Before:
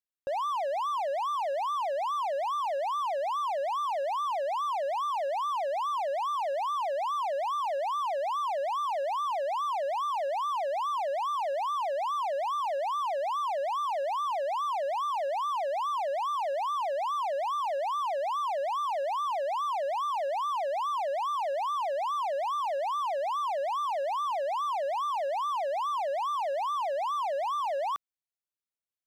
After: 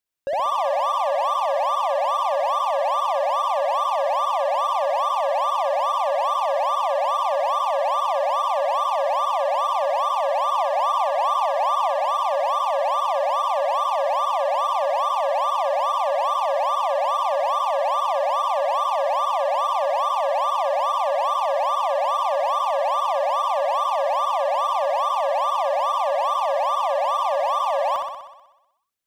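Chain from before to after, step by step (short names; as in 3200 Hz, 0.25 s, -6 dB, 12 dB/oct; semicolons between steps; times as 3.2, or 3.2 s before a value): 10.49–12 resonant low shelf 540 Hz -6.5 dB, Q 1.5; on a send: flutter echo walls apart 10.7 m, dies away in 0.98 s; on the sum: gain +6.5 dB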